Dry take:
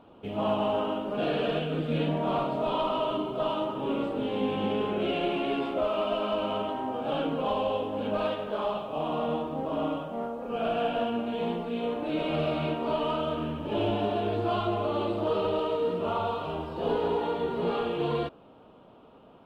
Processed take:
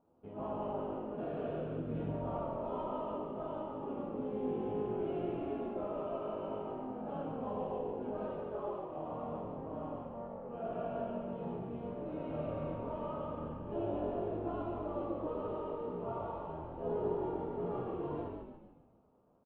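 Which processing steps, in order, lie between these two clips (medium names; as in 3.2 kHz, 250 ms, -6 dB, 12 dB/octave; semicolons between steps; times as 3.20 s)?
companding laws mixed up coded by A; low-pass 1.1 kHz 12 dB/octave; feedback comb 84 Hz, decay 0.17 s, harmonics all, mix 90%; frequency-shifting echo 143 ms, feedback 48%, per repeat -46 Hz, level -4 dB; trim -3.5 dB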